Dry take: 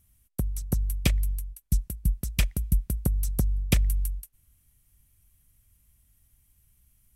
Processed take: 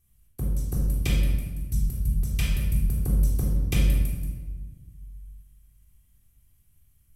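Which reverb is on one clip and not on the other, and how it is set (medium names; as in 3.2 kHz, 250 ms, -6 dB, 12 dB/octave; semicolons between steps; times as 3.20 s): simulated room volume 1100 m³, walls mixed, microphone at 3.7 m; trim -8 dB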